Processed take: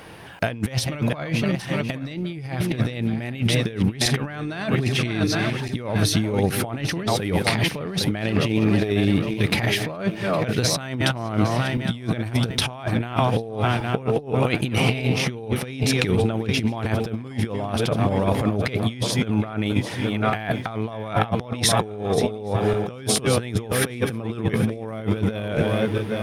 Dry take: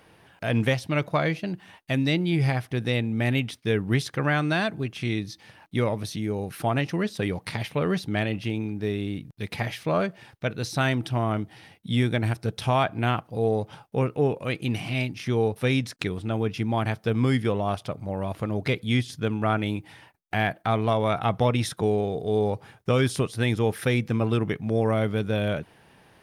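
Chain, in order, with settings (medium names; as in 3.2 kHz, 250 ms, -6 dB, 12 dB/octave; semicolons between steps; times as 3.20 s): backward echo that repeats 406 ms, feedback 64%, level -12.5 dB; compressor with a negative ratio -30 dBFS, ratio -0.5; trim +8 dB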